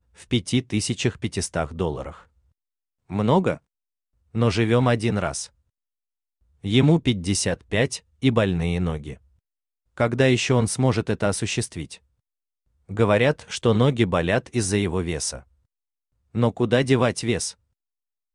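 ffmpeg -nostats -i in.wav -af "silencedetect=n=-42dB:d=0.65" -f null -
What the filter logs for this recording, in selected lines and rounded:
silence_start: 2.22
silence_end: 3.10 | silence_duration: 0.88
silence_start: 3.57
silence_end: 4.34 | silence_duration: 0.77
silence_start: 5.47
silence_end: 6.64 | silence_duration: 1.17
silence_start: 9.16
silence_end: 9.98 | silence_duration: 0.81
silence_start: 11.97
silence_end: 12.89 | silence_duration: 0.93
silence_start: 15.41
silence_end: 16.35 | silence_duration: 0.93
silence_start: 17.53
silence_end: 18.35 | silence_duration: 0.82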